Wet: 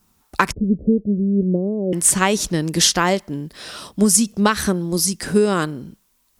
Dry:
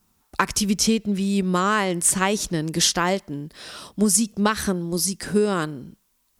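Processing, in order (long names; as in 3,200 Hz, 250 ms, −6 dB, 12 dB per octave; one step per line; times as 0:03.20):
0:00.52–0:01.93: Butterworth low-pass 580 Hz 48 dB per octave
level +4 dB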